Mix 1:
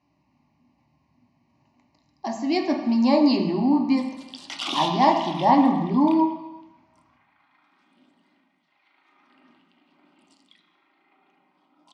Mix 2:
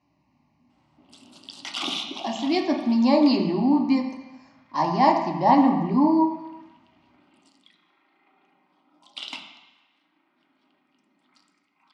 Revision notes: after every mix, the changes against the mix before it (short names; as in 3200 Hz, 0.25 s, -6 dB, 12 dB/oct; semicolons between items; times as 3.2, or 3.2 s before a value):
background: entry -2.85 s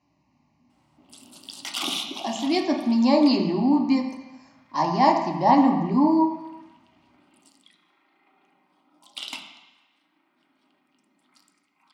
master: remove LPF 5400 Hz 12 dB/oct